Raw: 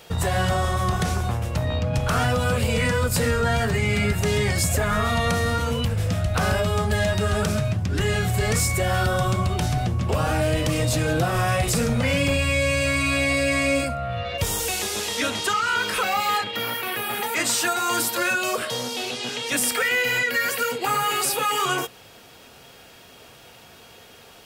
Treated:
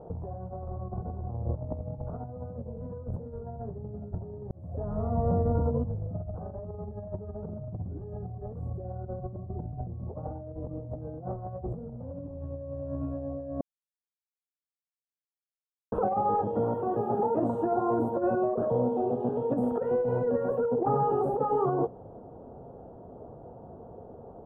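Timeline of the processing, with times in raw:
4.51–6.43 s: fade in
8.73–9.92 s: peaking EQ 1 kHz -7.5 dB
13.61–15.92 s: mute
whole clip: inverse Chebyshev low-pass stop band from 2 kHz, stop band 50 dB; compressor with a negative ratio -30 dBFS, ratio -0.5

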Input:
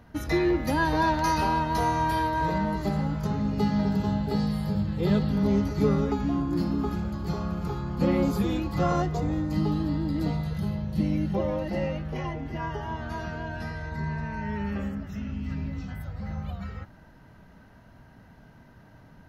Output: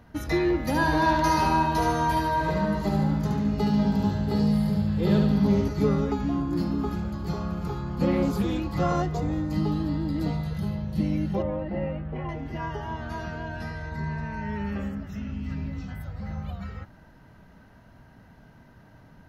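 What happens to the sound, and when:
0.64–5.68 s: feedback delay 72 ms, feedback 44%, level -4 dB
8.12–8.78 s: loudspeaker Doppler distortion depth 0.12 ms
11.42–12.29 s: distance through air 470 m

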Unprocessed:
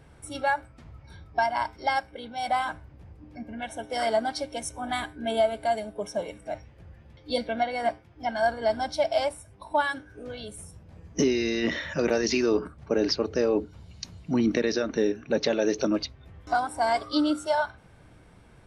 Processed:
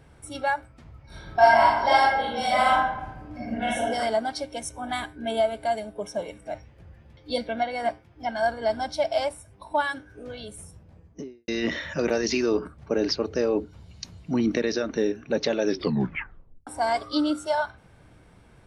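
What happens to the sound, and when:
1.06–3.87 s: reverb throw, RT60 1 s, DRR -9 dB
10.63–11.48 s: studio fade out
15.64 s: tape stop 1.03 s

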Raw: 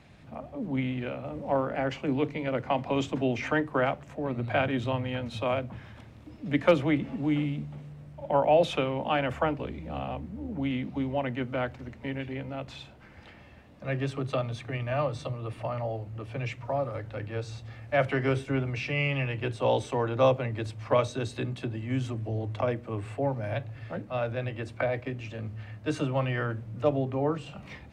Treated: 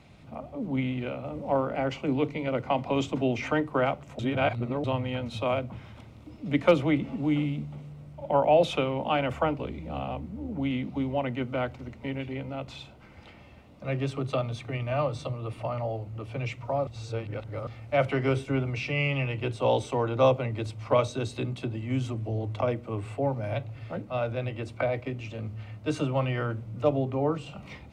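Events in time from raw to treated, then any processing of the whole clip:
4.19–4.84 s: reverse
16.87–17.67 s: reverse
whole clip: band-stop 1.7 kHz, Q 5; trim +1 dB

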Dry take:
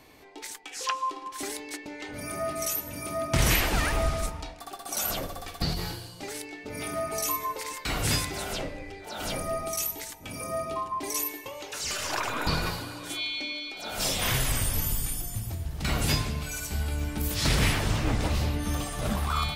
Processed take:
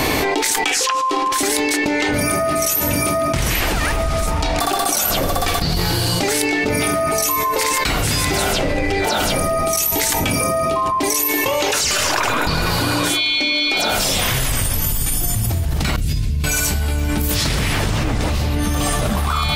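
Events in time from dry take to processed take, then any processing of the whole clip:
15.96–16.44 s: amplifier tone stack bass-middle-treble 10-0-1
whole clip: level flattener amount 100%; trim +2 dB

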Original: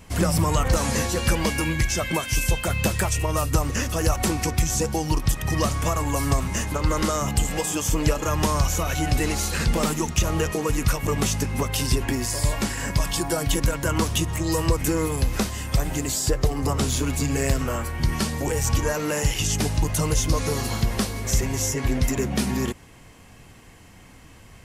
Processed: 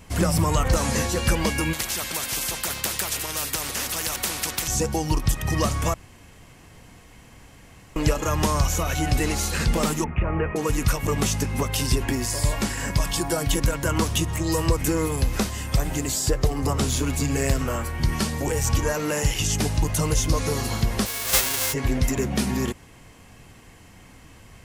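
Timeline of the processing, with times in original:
1.73–4.68 s: spectrum-flattening compressor 4:1
5.94–7.96 s: room tone
10.04–10.56 s: elliptic low-pass 2.4 kHz, stop band 50 dB
21.05–21.72 s: formants flattened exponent 0.1

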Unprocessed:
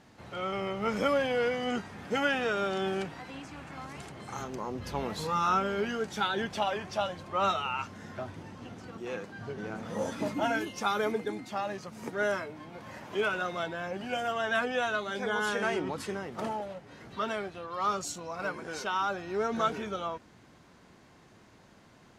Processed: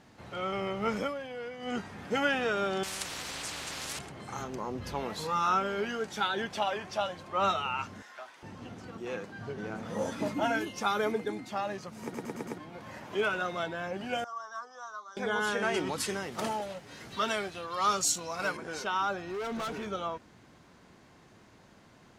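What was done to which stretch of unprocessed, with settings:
0.92–1.80 s: dip -11.5 dB, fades 0.22 s
2.83–3.99 s: spectrum-flattening compressor 10:1
4.94–7.37 s: bass shelf 240 Hz -6 dB
8.02–8.43 s: high-pass 1 kHz
12.03 s: stutter in place 0.11 s, 5 plays
14.24–15.17 s: two resonant band-passes 2.5 kHz, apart 2.3 oct
15.74–18.57 s: treble shelf 2.6 kHz +12 dB
19.26–19.87 s: hard clipper -33 dBFS

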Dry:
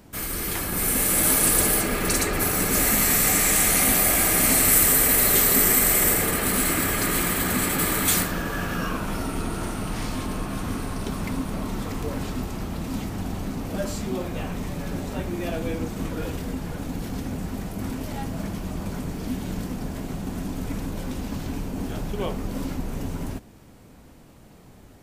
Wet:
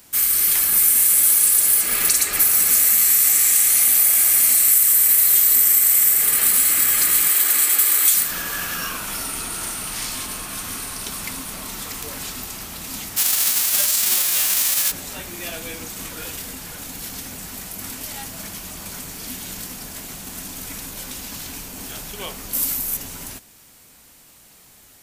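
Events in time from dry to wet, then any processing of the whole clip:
7.28–8.14 s: Chebyshev high-pass 320 Hz, order 3
13.16–14.90 s: formants flattened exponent 0.3
22.53–22.97 s: peaking EQ 13 kHz +14.5 dB 1.2 oct
whole clip: tilt shelf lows -9 dB; compression 6:1, threshold -18 dBFS; treble shelf 5.9 kHz +9.5 dB; trim -2 dB

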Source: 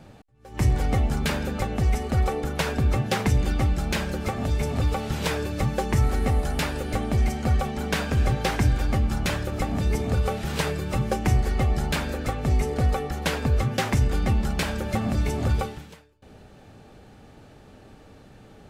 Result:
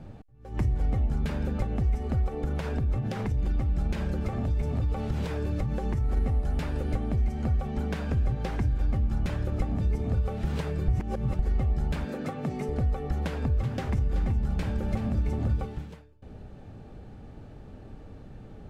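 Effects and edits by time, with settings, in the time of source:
2.28–6.17 s: compression, threshold -24 dBFS
10.88–11.39 s: reverse
12.05–12.69 s: Chebyshev high-pass 160 Hz, order 3
13.22–15.65 s: delay 378 ms -8.5 dB
whole clip: compression, threshold -29 dBFS; tilt EQ -2.5 dB/octave; trim -3 dB

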